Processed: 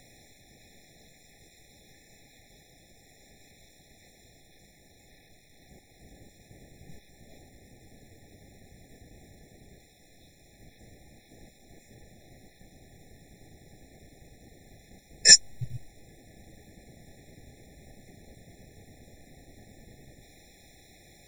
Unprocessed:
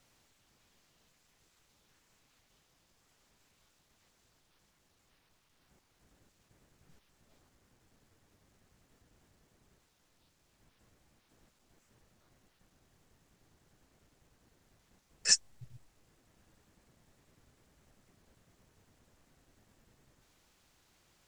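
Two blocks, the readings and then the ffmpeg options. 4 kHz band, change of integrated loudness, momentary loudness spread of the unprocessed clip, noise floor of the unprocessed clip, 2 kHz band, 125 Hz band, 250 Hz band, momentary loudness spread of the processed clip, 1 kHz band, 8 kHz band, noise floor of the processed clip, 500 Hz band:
+13.0 dB, +10.5 dB, 5 LU, -73 dBFS, +13.5 dB, +16.0 dB, +15.5 dB, 5 LU, +9.0 dB, +12.0 dB, -59 dBFS, +16.0 dB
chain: -af "apsyclip=19dB,acompressor=mode=upward:threshold=-56dB:ratio=2.5,afftfilt=real='re*eq(mod(floor(b*sr/1024/850),2),0)':imag='im*eq(mod(floor(b*sr/1024/850),2),0)':win_size=1024:overlap=0.75,volume=-3dB"

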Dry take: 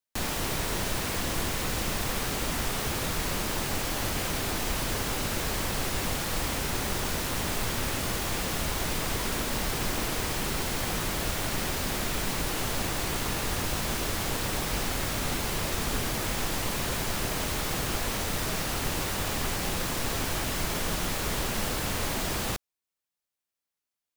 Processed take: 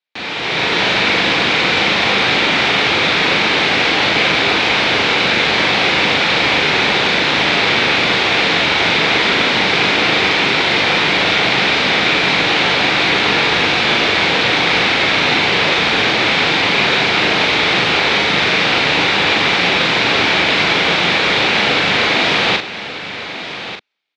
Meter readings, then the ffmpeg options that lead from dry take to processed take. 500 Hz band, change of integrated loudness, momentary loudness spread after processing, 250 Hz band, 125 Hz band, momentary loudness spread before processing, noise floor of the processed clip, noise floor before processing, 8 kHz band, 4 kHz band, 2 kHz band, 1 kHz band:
+16.0 dB, +17.0 dB, 1 LU, +13.0 dB, +6.5 dB, 0 LU, -27 dBFS, under -85 dBFS, +0.5 dB, +20.0 dB, +22.0 dB, +17.0 dB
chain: -filter_complex "[0:a]dynaudnorm=f=210:g=5:m=11dB,highpass=240,equalizer=f=240:t=q:w=4:g=-5,equalizer=f=360:t=q:w=4:g=-3,equalizer=f=600:t=q:w=4:g=-4,equalizer=f=1.1k:t=q:w=4:g=-4,equalizer=f=2.3k:t=q:w=4:g=7,equalizer=f=3.7k:t=q:w=4:g=5,lowpass=f=4.2k:w=0.5412,lowpass=f=4.2k:w=1.3066,asplit=2[a][b];[b]adelay=40,volume=-4.5dB[c];[a][c]amix=inputs=2:normalize=0,asplit=2[d][e];[e]aecho=0:1:1190:0.251[f];[d][f]amix=inputs=2:normalize=0,volume=6.5dB"

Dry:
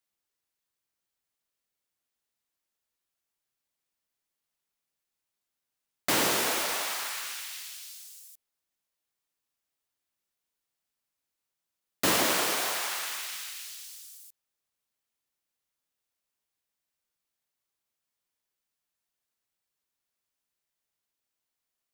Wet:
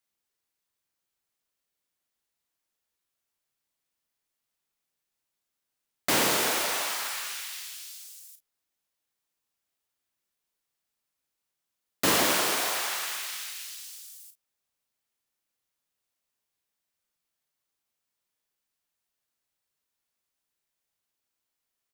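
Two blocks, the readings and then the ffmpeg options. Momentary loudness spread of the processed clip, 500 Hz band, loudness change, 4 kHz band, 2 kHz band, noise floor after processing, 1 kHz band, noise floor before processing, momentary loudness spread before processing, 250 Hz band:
19 LU, +1.5 dB, +1.5 dB, +1.5 dB, +1.5 dB, -84 dBFS, +1.5 dB, under -85 dBFS, 19 LU, +1.5 dB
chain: -af "aecho=1:1:36|49:0.335|0.168,volume=1dB"

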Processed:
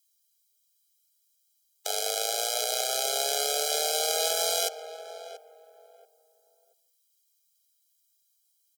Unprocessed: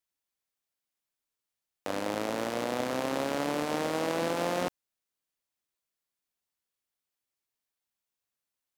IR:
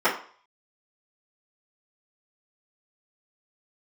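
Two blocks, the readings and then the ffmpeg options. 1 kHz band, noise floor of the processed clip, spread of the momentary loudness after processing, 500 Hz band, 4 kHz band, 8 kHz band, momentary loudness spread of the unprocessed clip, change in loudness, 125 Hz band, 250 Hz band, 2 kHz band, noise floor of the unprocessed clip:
+0.5 dB, -72 dBFS, 16 LU, 0.0 dB, +13.0 dB, +17.0 dB, 5 LU, +5.0 dB, under -40 dB, under -25 dB, 0.0 dB, under -85 dBFS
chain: -filter_complex "[0:a]afreqshift=140,asplit=2[a][b];[b]adelay=683,lowpass=f=1k:p=1,volume=-9dB,asplit=2[c][d];[d]adelay=683,lowpass=f=1k:p=1,volume=0.27,asplit=2[e][f];[f]adelay=683,lowpass=f=1k:p=1,volume=0.27[g];[a][c][e][g]amix=inputs=4:normalize=0,asplit=2[h][i];[1:a]atrim=start_sample=2205,adelay=143[j];[i][j]afir=irnorm=-1:irlink=0,volume=-36.5dB[k];[h][k]amix=inputs=2:normalize=0,aexciter=amount=7.5:drive=4.9:freq=2.9k,afftfilt=real='re*eq(mod(floor(b*sr/1024/420),2),1)':imag='im*eq(mod(floor(b*sr/1024/420),2),1)':win_size=1024:overlap=0.75"

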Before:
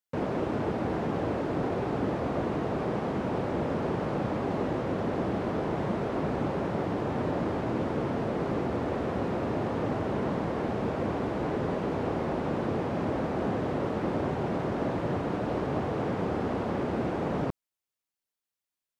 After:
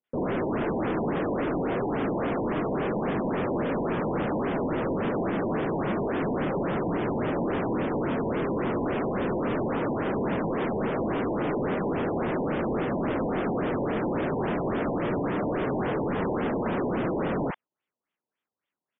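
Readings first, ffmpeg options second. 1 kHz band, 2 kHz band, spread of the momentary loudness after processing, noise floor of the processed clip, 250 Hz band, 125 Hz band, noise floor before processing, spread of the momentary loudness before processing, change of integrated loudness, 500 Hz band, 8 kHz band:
+2.0 dB, +4.5 dB, 0 LU, under -85 dBFS, +3.0 dB, -0.5 dB, under -85 dBFS, 1 LU, +2.5 dB, +2.5 dB, n/a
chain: -filter_complex "[0:a]highpass=160,asplit=2[a][b];[b]alimiter=level_in=1.5dB:limit=-24dB:level=0:latency=1,volume=-1.5dB,volume=1dB[c];[a][c]amix=inputs=2:normalize=0,acontrast=37,asoftclip=type=hard:threshold=-23dB,acrossover=split=790[d][e];[e]adelay=40[f];[d][f]amix=inputs=2:normalize=0,afftfilt=real='re*lt(b*sr/1024,1000*pow(3700/1000,0.5+0.5*sin(2*PI*3.6*pts/sr)))':imag='im*lt(b*sr/1024,1000*pow(3700/1000,0.5+0.5*sin(2*PI*3.6*pts/sr)))':win_size=1024:overlap=0.75,volume=-1.5dB"

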